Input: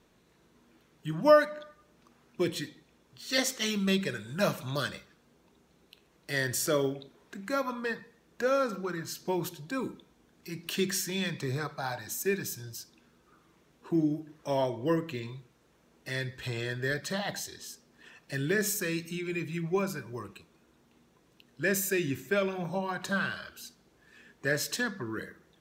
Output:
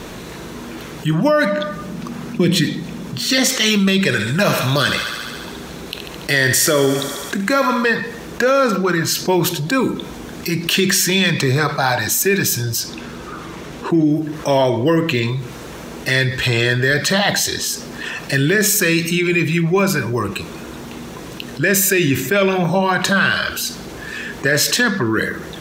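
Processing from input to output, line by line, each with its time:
0:01.28–0:03.49: parametric band 190 Hz +14 dB
0:04.05–0:07.85: feedback echo with a high-pass in the loop 71 ms, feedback 72%, high-pass 520 Hz, level −12 dB
0:12.80–0:14.04: high-shelf EQ 9,900 Hz −8.5 dB
whole clip: dynamic equaliser 2,700 Hz, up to +4 dB, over −47 dBFS, Q 0.91; boost into a limiter +19.5 dB; envelope flattener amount 50%; level −6.5 dB

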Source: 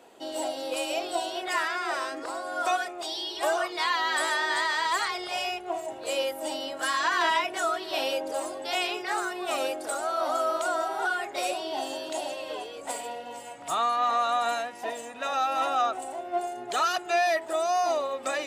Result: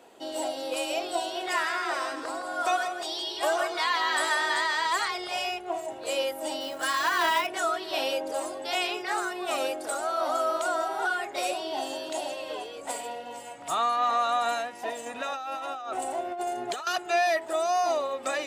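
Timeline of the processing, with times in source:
0:01.24–0:04.57: single-tap delay 163 ms −9 dB
0:06.61–0:07.47: floating-point word with a short mantissa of 2 bits
0:15.06–0:16.87: compressor whose output falls as the input rises −33 dBFS

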